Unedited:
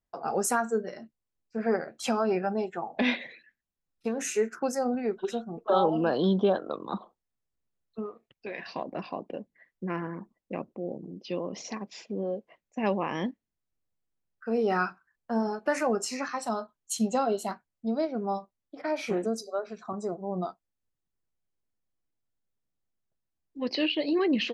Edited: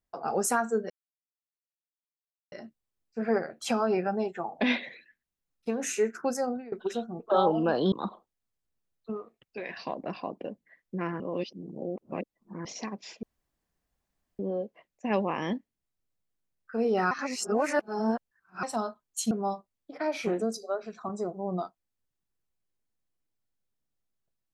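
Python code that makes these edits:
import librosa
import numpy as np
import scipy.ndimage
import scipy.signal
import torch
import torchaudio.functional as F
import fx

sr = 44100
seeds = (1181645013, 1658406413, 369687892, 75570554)

y = fx.edit(x, sr, fx.insert_silence(at_s=0.9, length_s=1.62),
    fx.fade_out_to(start_s=4.77, length_s=0.33, floor_db=-22.0),
    fx.cut(start_s=6.3, length_s=0.51),
    fx.reverse_span(start_s=10.09, length_s=1.45),
    fx.insert_room_tone(at_s=12.12, length_s=1.16),
    fx.reverse_span(start_s=14.84, length_s=1.52),
    fx.cut(start_s=17.04, length_s=1.11), tone=tone)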